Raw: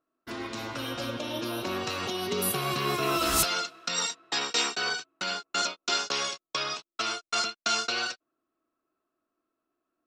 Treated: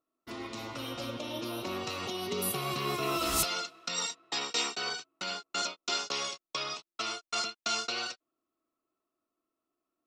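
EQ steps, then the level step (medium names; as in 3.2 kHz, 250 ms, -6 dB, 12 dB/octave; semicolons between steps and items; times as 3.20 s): band-stop 1.6 kHz, Q 5.4; -4.0 dB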